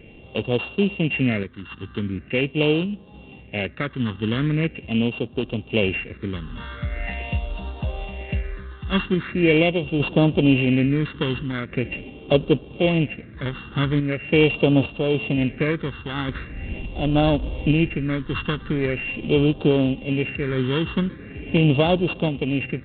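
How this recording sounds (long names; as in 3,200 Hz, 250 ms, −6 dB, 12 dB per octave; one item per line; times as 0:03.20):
a buzz of ramps at a fixed pitch in blocks of 16 samples
phaser sweep stages 6, 0.42 Hz, lowest notch 620–2,000 Hz
sample-and-hold tremolo
G.726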